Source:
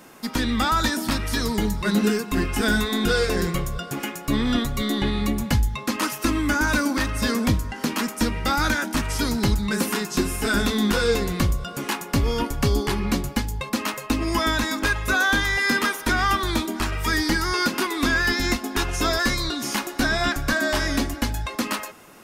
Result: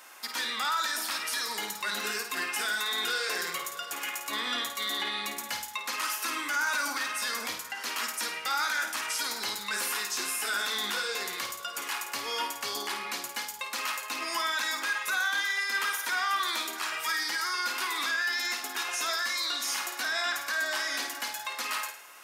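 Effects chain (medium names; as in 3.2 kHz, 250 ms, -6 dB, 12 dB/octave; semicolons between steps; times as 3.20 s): high-pass 1 kHz 12 dB/octave; peak limiter -22 dBFS, peak gain reduction 10 dB; flutter echo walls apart 9.1 m, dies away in 0.45 s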